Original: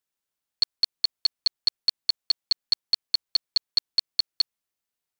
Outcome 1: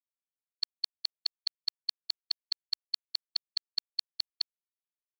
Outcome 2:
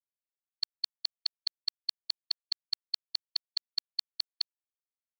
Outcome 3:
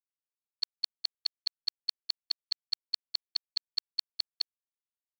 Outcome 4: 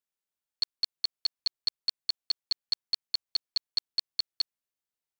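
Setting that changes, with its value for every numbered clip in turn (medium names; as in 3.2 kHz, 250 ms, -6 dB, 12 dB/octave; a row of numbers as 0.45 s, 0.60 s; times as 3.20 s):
gate, range: -40 dB, -55 dB, -25 dB, -7 dB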